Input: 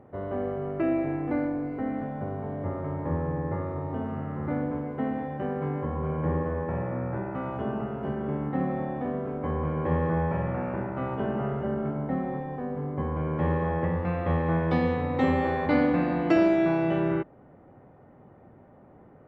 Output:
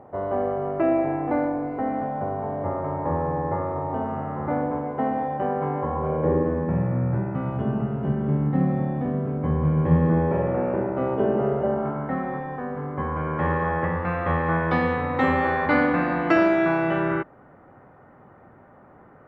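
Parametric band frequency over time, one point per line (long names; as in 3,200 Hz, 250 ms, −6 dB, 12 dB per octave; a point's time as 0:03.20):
parametric band +11 dB 1.5 octaves
0:05.98 820 Hz
0:06.89 140 Hz
0:09.90 140 Hz
0:10.40 440 Hz
0:11.49 440 Hz
0:12.06 1,400 Hz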